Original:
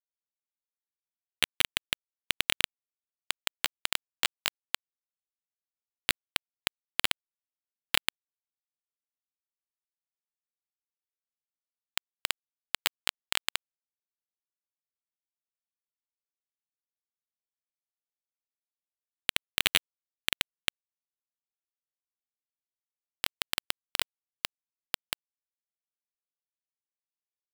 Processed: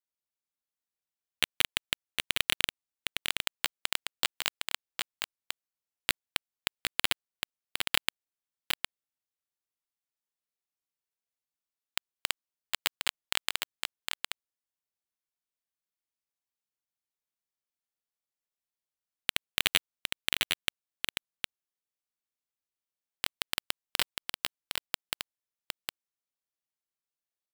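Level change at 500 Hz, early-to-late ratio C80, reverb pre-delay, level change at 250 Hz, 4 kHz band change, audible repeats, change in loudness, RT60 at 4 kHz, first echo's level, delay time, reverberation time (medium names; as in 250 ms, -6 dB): 0.0 dB, no reverb, no reverb, 0.0 dB, 0.0 dB, 1, -1.0 dB, no reverb, -5.0 dB, 760 ms, no reverb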